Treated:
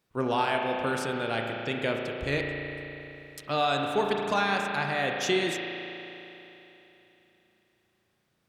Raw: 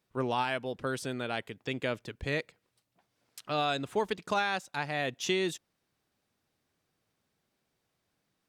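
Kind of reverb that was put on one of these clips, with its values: spring tank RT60 3.3 s, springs 35 ms, chirp 30 ms, DRR 1 dB; trim +2.5 dB

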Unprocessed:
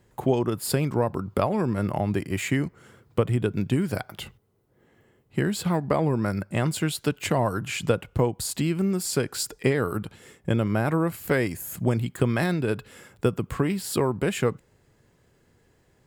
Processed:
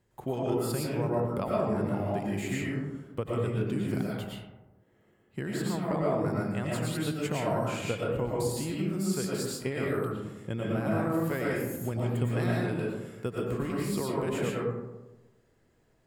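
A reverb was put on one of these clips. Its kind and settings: algorithmic reverb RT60 1.1 s, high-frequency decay 0.35×, pre-delay 75 ms, DRR -4.5 dB; trim -11 dB

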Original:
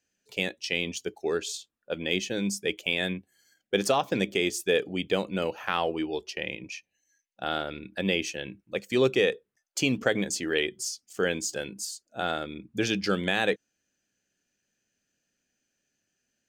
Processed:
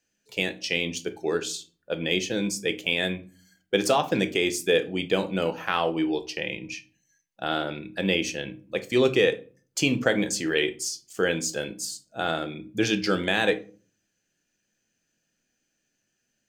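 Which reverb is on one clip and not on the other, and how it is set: simulated room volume 240 m³, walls furnished, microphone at 0.66 m; trim +2 dB

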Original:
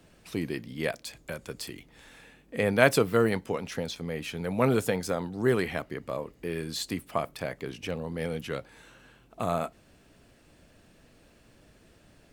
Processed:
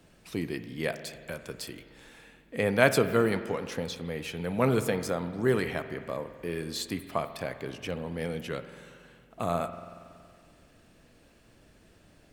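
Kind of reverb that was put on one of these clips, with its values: spring tank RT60 2.1 s, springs 46 ms, chirp 45 ms, DRR 10.5 dB; trim -1 dB

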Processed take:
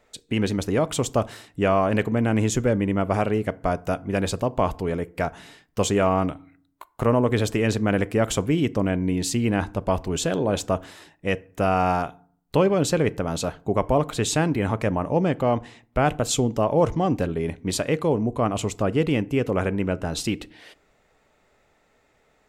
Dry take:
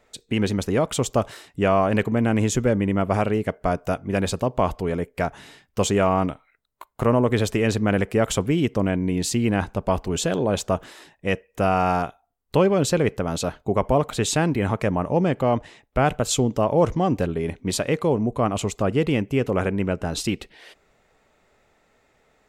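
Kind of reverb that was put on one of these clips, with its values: FDN reverb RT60 0.52 s, low-frequency decay 1.4×, high-frequency decay 0.55×, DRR 18 dB; trim -1 dB

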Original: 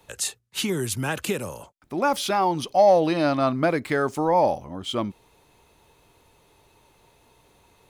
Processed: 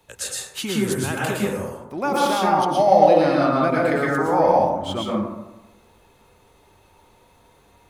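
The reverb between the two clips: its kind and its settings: plate-style reverb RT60 1 s, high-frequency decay 0.35×, pre-delay 100 ms, DRR -5 dB; trim -2.5 dB

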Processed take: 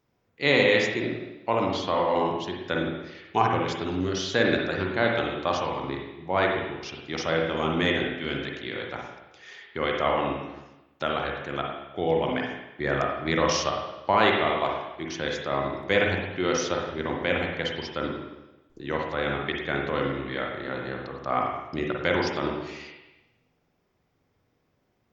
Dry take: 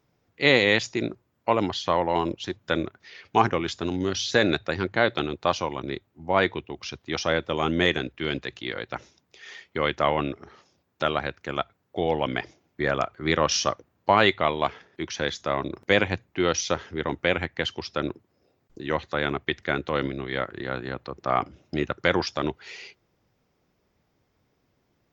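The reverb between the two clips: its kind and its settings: spring tank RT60 1 s, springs 43/51/55 ms, chirp 60 ms, DRR -0.5 dB; trim -4 dB

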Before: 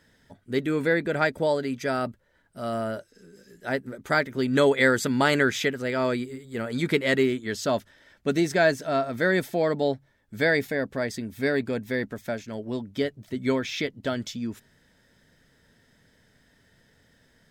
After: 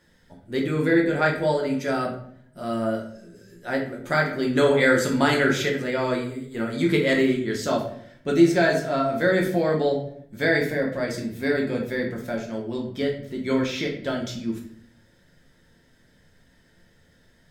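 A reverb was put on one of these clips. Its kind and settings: simulated room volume 100 m³, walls mixed, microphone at 0.9 m; trim -2 dB

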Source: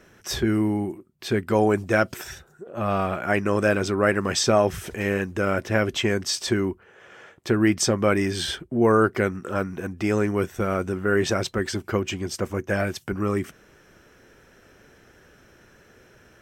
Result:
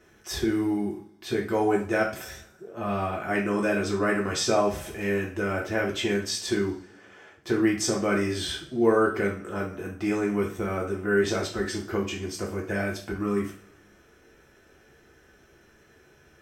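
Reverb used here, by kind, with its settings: two-slope reverb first 0.4 s, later 1.8 s, from -25 dB, DRR -2.5 dB; trim -8 dB

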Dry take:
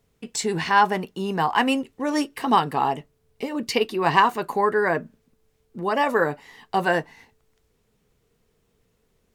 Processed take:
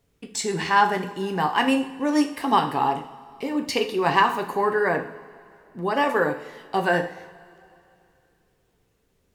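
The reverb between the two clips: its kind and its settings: two-slope reverb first 0.51 s, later 2.8 s, from -18 dB, DRR 5.5 dB; trim -1.5 dB

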